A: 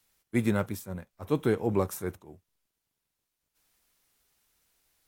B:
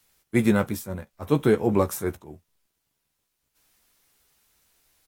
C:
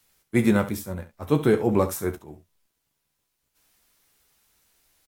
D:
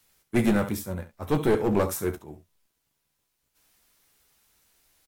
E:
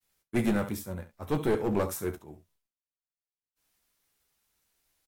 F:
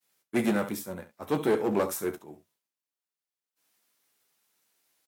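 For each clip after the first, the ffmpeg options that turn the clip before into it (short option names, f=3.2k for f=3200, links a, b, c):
-filter_complex "[0:a]asplit=2[a][b];[b]adelay=14,volume=-8.5dB[c];[a][c]amix=inputs=2:normalize=0,volume=5.5dB"
-af "aecho=1:1:33|68:0.133|0.211"
-af "aeval=exprs='clip(val(0),-1,0.0944)':c=same"
-af "agate=range=-33dB:threshold=-60dB:ratio=3:detection=peak,volume=-4.5dB"
-af "highpass=200,volume=2.5dB"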